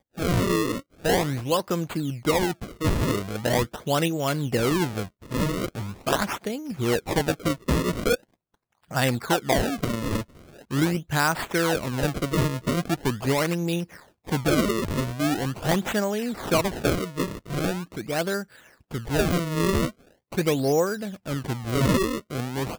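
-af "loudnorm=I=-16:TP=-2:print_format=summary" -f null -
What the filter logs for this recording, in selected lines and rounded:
Input Integrated:    -25.8 LUFS
Input True Peak:      -6.7 dBTP
Input LRA:             1.7 LU
Input Threshold:     -36.0 LUFS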